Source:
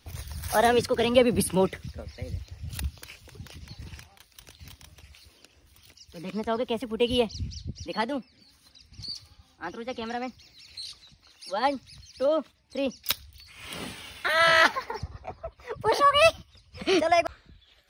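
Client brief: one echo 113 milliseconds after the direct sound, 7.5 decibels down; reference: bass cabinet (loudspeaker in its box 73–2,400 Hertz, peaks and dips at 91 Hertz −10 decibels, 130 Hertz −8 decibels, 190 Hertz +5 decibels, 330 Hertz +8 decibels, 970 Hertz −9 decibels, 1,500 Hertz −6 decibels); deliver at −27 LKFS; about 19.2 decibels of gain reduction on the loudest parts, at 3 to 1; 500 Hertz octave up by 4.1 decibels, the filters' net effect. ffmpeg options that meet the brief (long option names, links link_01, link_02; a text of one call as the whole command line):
ffmpeg -i in.wav -af "equalizer=frequency=500:width_type=o:gain=4.5,acompressor=threshold=-38dB:ratio=3,highpass=frequency=73:width=0.5412,highpass=frequency=73:width=1.3066,equalizer=frequency=91:width_type=q:width=4:gain=-10,equalizer=frequency=130:width_type=q:width=4:gain=-8,equalizer=frequency=190:width_type=q:width=4:gain=5,equalizer=frequency=330:width_type=q:width=4:gain=8,equalizer=frequency=970:width_type=q:width=4:gain=-9,equalizer=frequency=1500:width_type=q:width=4:gain=-6,lowpass=frequency=2400:width=0.5412,lowpass=frequency=2400:width=1.3066,aecho=1:1:113:0.422,volume=12dB" out.wav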